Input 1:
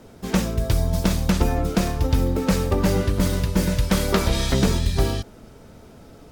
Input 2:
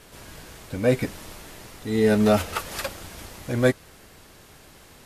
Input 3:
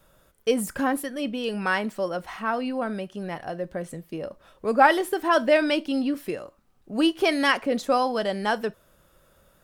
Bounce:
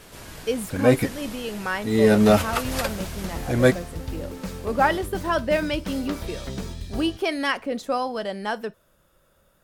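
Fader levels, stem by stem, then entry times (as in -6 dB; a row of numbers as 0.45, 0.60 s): -13.0, +2.5, -3.0 dB; 1.95, 0.00, 0.00 s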